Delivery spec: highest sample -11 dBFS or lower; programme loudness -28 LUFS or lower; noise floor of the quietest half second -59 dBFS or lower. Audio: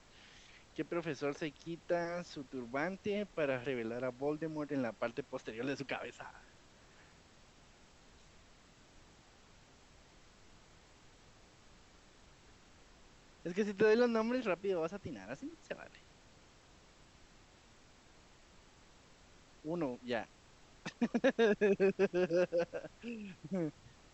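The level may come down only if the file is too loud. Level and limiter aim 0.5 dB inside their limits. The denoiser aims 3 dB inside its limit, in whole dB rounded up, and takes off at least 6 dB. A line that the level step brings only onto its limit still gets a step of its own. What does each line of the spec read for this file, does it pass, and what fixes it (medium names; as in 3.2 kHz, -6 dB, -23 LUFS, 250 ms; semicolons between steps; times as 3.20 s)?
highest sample -18.5 dBFS: pass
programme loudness -37.0 LUFS: pass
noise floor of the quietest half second -62 dBFS: pass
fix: none needed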